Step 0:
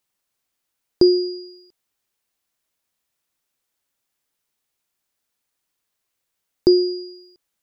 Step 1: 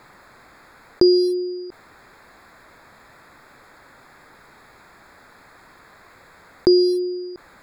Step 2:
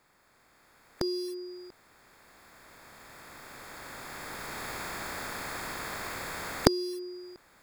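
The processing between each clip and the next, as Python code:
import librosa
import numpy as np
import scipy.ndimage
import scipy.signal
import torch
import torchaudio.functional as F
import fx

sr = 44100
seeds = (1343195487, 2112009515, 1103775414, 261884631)

y1 = fx.wiener(x, sr, points=15)
y1 = fx.peak_eq(y1, sr, hz=1800.0, db=7.5, octaves=1.8)
y1 = fx.env_flatten(y1, sr, amount_pct=50)
y1 = F.gain(torch.from_numpy(y1), -2.0).numpy()
y2 = fx.spec_flatten(y1, sr, power=0.65)
y2 = fx.recorder_agc(y2, sr, target_db=-6.5, rise_db_per_s=8.2, max_gain_db=30)
y2 = fx.notch(y2, sr, hz=4000.0, q=14.0)
y2 = F.gain(torch.from_numpy(y2), -18.0).numpy()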